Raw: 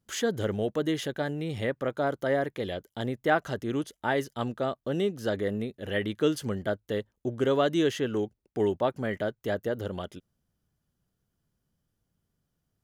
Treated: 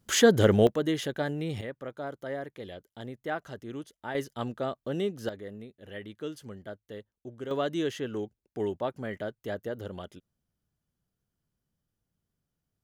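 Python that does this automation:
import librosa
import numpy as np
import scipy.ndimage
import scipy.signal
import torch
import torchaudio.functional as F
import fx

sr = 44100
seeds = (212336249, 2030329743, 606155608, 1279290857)

y = fx.gain(x, sr, db=fx.steps((0.0, 8.5), (0.67, 0.0), (1.61, -9.0), (4.15, -2.5), (5.29, -12.0), (7.51, -5.0)))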